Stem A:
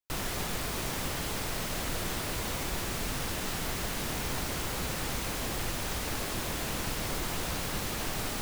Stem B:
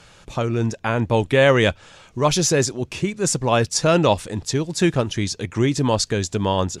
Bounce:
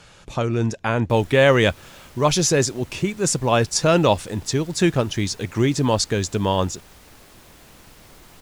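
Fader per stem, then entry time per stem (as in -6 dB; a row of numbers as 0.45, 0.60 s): -14.0, 0.0 dB; 1.00, 0.00 s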